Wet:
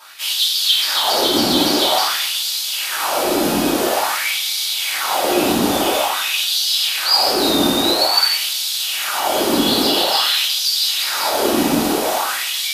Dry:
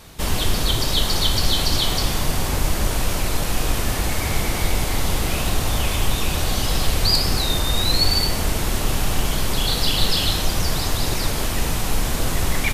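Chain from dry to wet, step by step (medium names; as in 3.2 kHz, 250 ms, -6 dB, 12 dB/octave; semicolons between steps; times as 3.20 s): peak limiter -10.5 dBFS, peak gain reduction 6.5 dB; ten-band graphic EQ 125 Hz -6 dB, 2 kHz -6 dB, 8 kHz -4 dB; simulated room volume 210 m³, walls mixed, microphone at 2.8 m; LFO high-pass sine 0.49 Hz 250–4000 Hz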